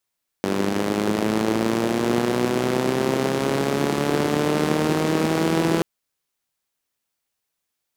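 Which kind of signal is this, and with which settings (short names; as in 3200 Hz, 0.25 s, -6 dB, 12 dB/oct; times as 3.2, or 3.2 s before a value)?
four-cylinder engine model, changing speed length 5.38 s, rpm 2900, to 5000, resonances 220/340 Hz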